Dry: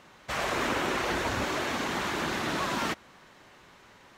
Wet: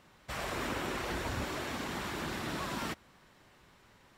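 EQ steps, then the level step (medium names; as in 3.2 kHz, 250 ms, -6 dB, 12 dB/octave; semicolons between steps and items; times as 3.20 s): bass shelf 170 Hz +9.5 dB; treble shelf 7.4 kHz +7.5 dB; band-stop 6.4 kHz, Q 14; -8.5 dB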